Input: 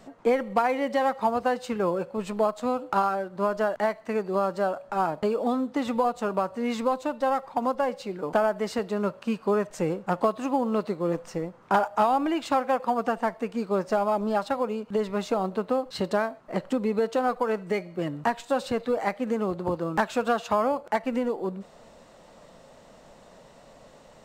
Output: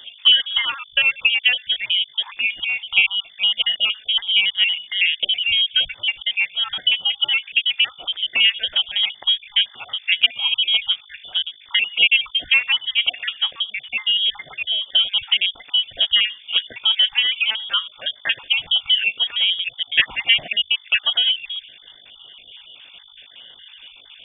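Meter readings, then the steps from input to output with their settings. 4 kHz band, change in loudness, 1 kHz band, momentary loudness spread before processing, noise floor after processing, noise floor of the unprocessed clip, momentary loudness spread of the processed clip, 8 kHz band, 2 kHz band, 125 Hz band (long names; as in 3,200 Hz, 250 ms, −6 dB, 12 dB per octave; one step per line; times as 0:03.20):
+30.5 dB, +9.5 dB, −14.0 dB, 5 LU, −48 dBFS, −53 dBFS, 7 LU, below −30 dB, +16.0 dB, below −15 dB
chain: time-frequency cells dropped at random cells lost 49%
hum with harmonics 50 Hz, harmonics 10, −58 dBFS −4 dB per octave
voice inversion scrambler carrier 3,500 Hz
level +9 dB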